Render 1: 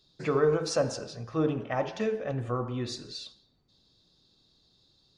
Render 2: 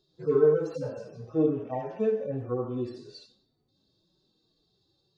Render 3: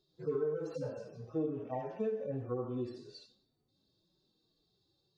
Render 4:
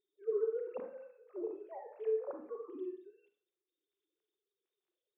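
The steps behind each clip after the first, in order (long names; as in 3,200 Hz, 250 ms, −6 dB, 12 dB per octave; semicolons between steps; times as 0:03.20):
harmonic-percussive split with one part muted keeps harmonic; drawn EQ curve 130 Hz 0 dB, 380 Hz +8 dB, 2,200 Hz −3 dB; level −3 dB
downward compressor 6 to 1, threshold −26 dBFS, peak gain reduction 10 dB; level −5 dB
three sine waves on the formant tracks; on a send at −5 dB: convolution reverb, pre-delay 28 ms; on the sum: level −3 dB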